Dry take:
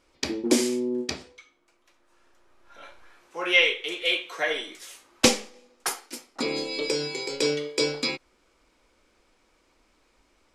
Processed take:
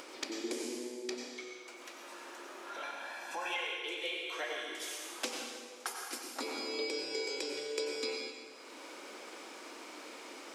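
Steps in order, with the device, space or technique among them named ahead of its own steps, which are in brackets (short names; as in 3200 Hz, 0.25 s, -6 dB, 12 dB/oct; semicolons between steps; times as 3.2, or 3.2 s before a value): 2.83–3.56 comb 1.2 ms, depth 82%; HPF 270 Hz 24 dB/oct; upward and downward compression (upward compressor, threshold -39 dBFS; compressor 6:1, threshold -40 dBFS, peak gain reduction 24 dB); plate-style reverb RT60 1.6 s, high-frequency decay 0.9×, pre-delay 80 ms, DRR 1 dB; gain +1.5 dB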